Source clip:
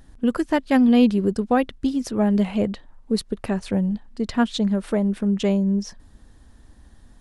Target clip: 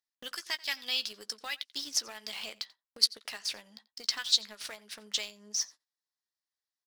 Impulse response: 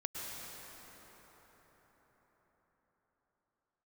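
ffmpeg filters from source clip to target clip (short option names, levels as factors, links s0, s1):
-filter_complex "[0:a]highpass=980,agate=range=0.0251:threshold=0.002:ratio=16:detection=peak,equalizer=f=4800:w=1.3:g=13.5,acrossover=split=1800[s0][s1];[s0]acompressor=threshold=0.00562:ratio=6[s2];[s2][s1]amix=inputs=2:normalize=0,asetrate=46305,aresample=44100,asplit=2[s3][s4];[s4]acrusher=bits=5:mix=0:aa=0.000001,volume=0.398[s5];[s3][s5]amix=inputs=2:normalize=0,asplit=2[s6][s7];[s7]adelay=14,volume=0.251[s8];[s6][s8]amix=inputs=2:normalize=0,asplit=2[s9][s10];[s10]adelay=87.46,volume=0.0794,highshelf=f=4000:g=-1.97[s11];[s9][s11]amix=inputs=2:normalize=0,volume=0.531"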